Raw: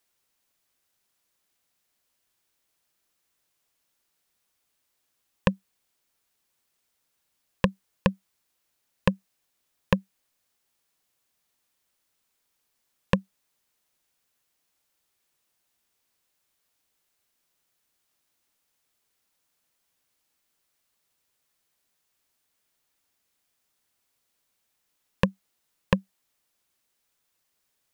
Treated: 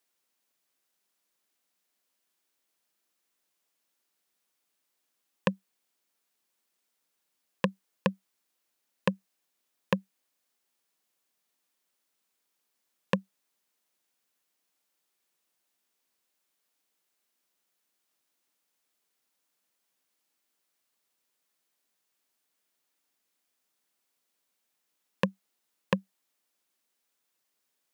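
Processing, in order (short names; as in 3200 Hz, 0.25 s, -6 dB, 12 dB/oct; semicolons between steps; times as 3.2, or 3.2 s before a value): Chebyshev high-pass 220 Hz, order 2; gain -2.5 dB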